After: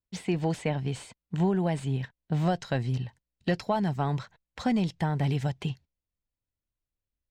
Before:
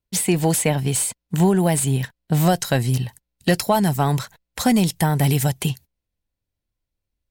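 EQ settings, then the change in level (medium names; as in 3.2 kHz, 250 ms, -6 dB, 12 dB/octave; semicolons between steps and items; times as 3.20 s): distance through air 160 m; -8.5 dB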